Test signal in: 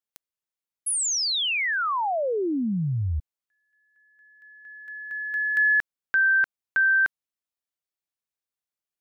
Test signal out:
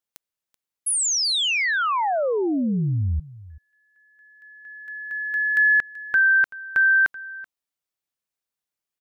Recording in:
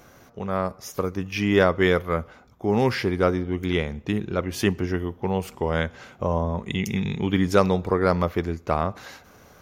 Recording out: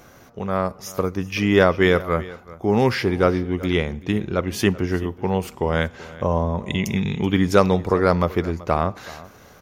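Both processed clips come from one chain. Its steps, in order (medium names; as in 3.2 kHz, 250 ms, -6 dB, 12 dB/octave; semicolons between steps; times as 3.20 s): delay 382 ms -19 dB; trim +3 dB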